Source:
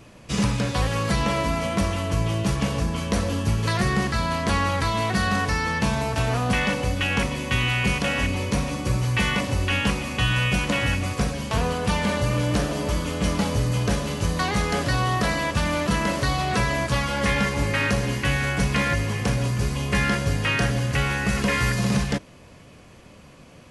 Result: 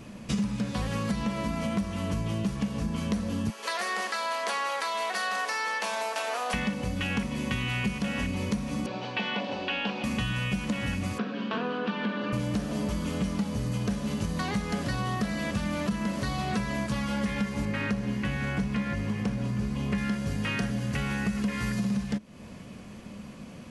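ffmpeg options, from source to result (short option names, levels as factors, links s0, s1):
-filter_complex "[0:a]asettb=1/sr,asplit=3[s0][s1][s2];[s0]atrim=end=3.504[s3];[s1]atrim=start=3.5:end=6.54,asetpts=PTS-STARTPTS,afade=t=in:d=0.004:c=qsin,afade=t=out:st=3.036:d=0.004:c=qsin,highpass=f=510:w=0.5412,highpass=f=510:w=1.3066[s4];[s2]atrim=start=6.536[s5];[s3][s4]acrossfade=d=0.004:c1=hsin:c2=qsin[s6];[s6][s5]acrossfade=d=0.004:c1=qsin:c2=hsin,asettb=1/sr,asplit=3[s7][s8][s9];[s7]atrim=end=8.864[s10];[s8]atrim=start=8.86:end=10.04,asetpts=PTS-STARTPTS,afade=t=in:d=0.004:c=qsin,afade=t=out:st=1.176:d=0.004:c=qsin,highpass=440,equalizer=f=740:t=q:w=4:g=4,equalizer=f=1200:t=q:w=4:g=-7,equalizer=f=2000:t=q:w=4:g=-9,lowpass=f=4000:w=0.5412,lowpass=f=4000:w=1.3066[s11];[s9]atrim=start=10.036[s12];[s10][s11]acrossfade=d=0.004:c1=hsin:c2=qsin[s13];[s13][s12]acrossfade=d=0.004:c1=qsin:c2=hsin,asplit=3[s14][s15][s16];[s14]afade=t=out:st=11.17:d=0.02[s17];[s15]highpass=f=260:w=0.5412,highpass=f=260:w=1.3066,equalizer=f=590:t=q:w=4:g=-5,equalizer=f=840:t=q:w=4:g=-6,equalizer=f=1500:t=q:w=4:g=4,equalizer=f=2100:t=q:w=4:g=-8,lowpass=f=3400:w=0.5412,lowpass=f=3400:w=1.3066,afade=t=in:st=11.17:d=0.02,afade=t=out:st=12.32:d=0.02[s18];[s16]afade=t=in:st=12.32:d=0.02[s19];[s17][s18][s19]amix=inputs=3:normalize=0,asettb=1/sr,asplit=3[s20][s21][s22];[s20]atrim=end=15.124[s23];[s21]atrim=start=15.12:end=15.78,asetpts=PTS-STARTPTS,afade=t=in:d=0.004:c=qsin,afade=t=out:st=0.656:d=0.004:c=qsin,bandreject=f=970:w=12[s24];[s22]atrim=start=15.776[s25];[s23][s24]acrossfade=d=0.004:c1=hsin:c2=qsin[s26];[s26][s25]acrossfade=d=0.004:c1=qsin:c2=hsin,asettb=1/sr,asplit=3[s27][s28][s29];[s27]atrim=end=17.654[s30];[s28]atrim=start=17.65:end=19.98,asetpts=PTS-STARTPTS,afade=t=in:d=0.004:c=qsin,afade=t=out:st=2.326:d=0.004:c=qsin,highshelf=f=4800:g=-9.5[s31];[s29]atrim=start=19.976[s32];[s30][s31]acrossfade=d=0.004:c1=hsin:c2=qsin[s33];[s33][s32]acrossfade=d=0.004:c1=qsin:c2=hsin,equalizer=f=210:t=o:w=0.45:g=13,acompressor=threshold=0.0447:ratio=6"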